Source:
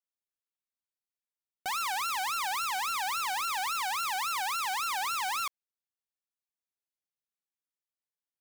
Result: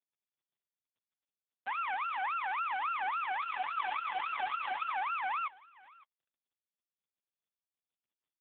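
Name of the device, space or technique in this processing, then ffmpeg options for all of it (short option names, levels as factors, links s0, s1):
satellite phone: -filter_complex "[0:a]asplit=3[s0][s1][s2];[s0]afade=t=out:st=1.96:d=0.02[s3];[s1]equalizer=f=220:t=o:w=1.7:g=-3.5,afade=t=in:st=1.96:d=0.02,afade=t=out:st=2.9:d=0.02[s4];[s2]afade=t=in:st=2.9:d=0.02[s5];[s3][s4][s5]amix=inputs=3:normalize=0,asettb=1/sr,asplit=3[s6][s7][s8];[s6]atrim=end=3.414[s9];[s7]atrim=start=3.41:end=4.91,asetpts=PTS-STARTPTS,afade=t=in:d=0.004:c=qsin,afade=t=out:st=1.496:d=0.004:c=qsin,aecho=1:1:7:0.87,atrim=end_sample=66150[s10];[s8]atrim=start=4.906[s11];[s9][s10]acrossfade=d=0.004:c1=hsin:c2=qsin[s12];[s12][s11]acrossfade=d=0.004:c1=qsin:c2=hsin,highpass=330,lowpass=3200,aecho=1:1:556:0.0841" -ar 8000 -c:a libopencore_amrnb -b:a 4750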